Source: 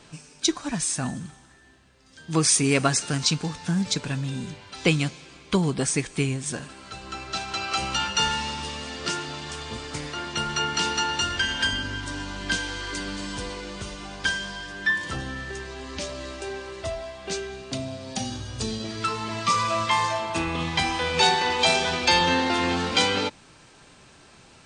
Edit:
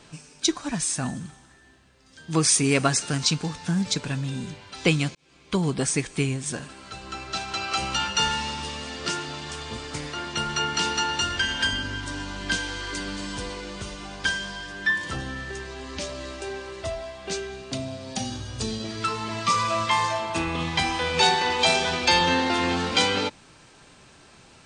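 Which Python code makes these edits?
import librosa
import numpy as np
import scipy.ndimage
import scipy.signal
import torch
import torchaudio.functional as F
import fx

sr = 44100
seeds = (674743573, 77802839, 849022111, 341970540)

y = fx.edit(x, sr, fx.fade_in_span(start_s=5.15, length_s=0.54), tone=tone)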